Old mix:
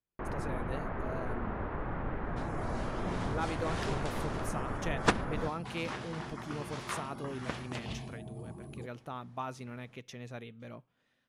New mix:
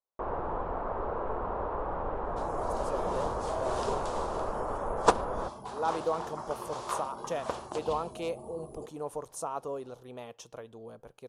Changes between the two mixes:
speech: entry +2.45 s; master: add graphic EQ 125/250/500/1000/2000/8000 Hz -8/-5/+8/+9/-11/+5 dB

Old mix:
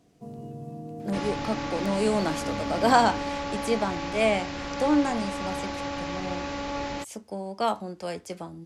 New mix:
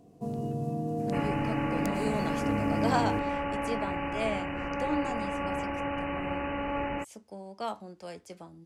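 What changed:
speech -9.0 dB; first sound +6.5 dB; second sound: add brick-wall FIR low-pass 3000 Hz

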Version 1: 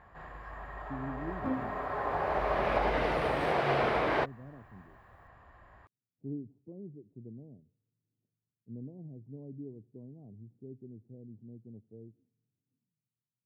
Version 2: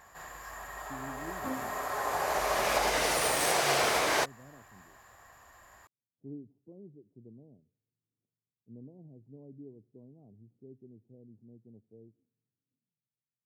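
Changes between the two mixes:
first sound: remove air absorption 430 m; master: add low shelf 320 Hz -8 dB

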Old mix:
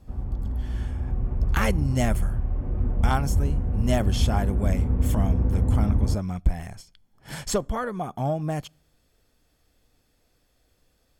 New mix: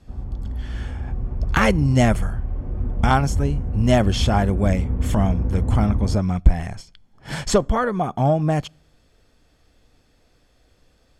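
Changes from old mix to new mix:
speech +8.0 dB; master: add air absorption 53 m

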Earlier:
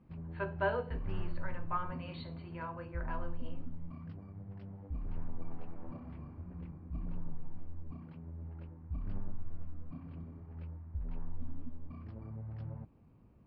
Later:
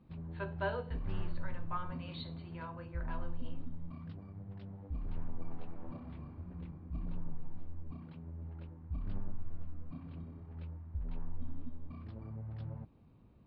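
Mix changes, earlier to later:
speech -4.0 dB; master: add bell 3700 Hz +11.5 dB 0.44 oct

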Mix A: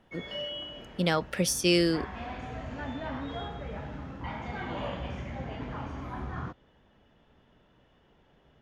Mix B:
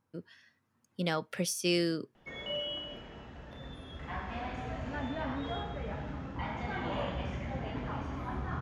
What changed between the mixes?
speech -5.5 dB; background: entry +2.15 s

